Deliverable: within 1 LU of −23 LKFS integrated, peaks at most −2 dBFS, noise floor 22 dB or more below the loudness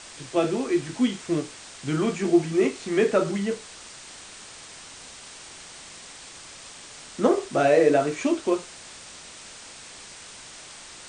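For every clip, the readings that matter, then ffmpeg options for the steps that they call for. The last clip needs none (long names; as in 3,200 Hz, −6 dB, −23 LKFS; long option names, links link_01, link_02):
background noise floor −44 dBFS; target noise floor −46 dBFS; integrated loudness −24.0 LKFS; sample peak −4.5 dBFS; target loudness −23.0 LKFS
→ -af "afftdn=noise_reduction=6:noise_floor=-44"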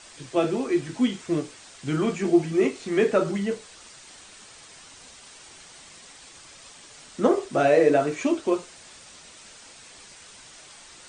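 background noise floor −48 dBFS; integrated loudness −24.0 LKFS; sample peak −5.0 dBFS; target loudness −23.0 LKFS
→ -af "volume=1dB"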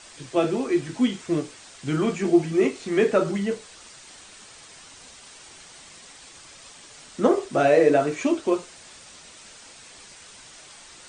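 integrated loudness −23.0 LKFS; sample peak −4.0 dBFS; background noise floor −47 dBFS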